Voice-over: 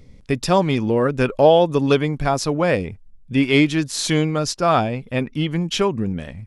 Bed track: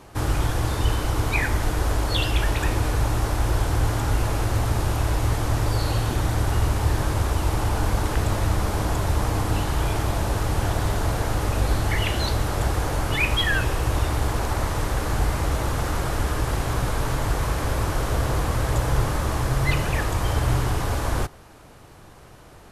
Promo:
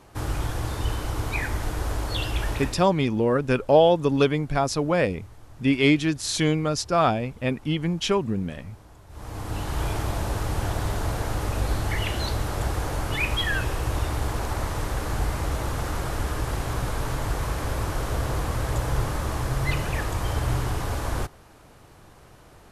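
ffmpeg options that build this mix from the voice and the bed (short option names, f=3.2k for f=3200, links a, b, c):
-filter_complex "[0:a]adelay=2300,volume=-3.5dB[a];[1:a]volume=17.5dB,afade=t=out:st=2.54:d=0.32:silence=0.0891251,afade=t=in:st=9.09:d=0.73:silence=0.0749894[b];[a][b]amix=inputs=2:normalize=0"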